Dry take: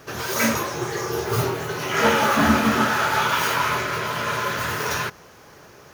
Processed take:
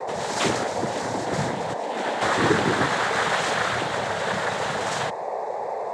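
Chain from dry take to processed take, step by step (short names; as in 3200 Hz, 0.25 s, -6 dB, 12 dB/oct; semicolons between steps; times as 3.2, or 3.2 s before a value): 1.73–2.21 ladder high-pass 290 Hz, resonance 45%; whine 660 Hz -24 dBFS; noise vocoder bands 6; gain -2.5 dB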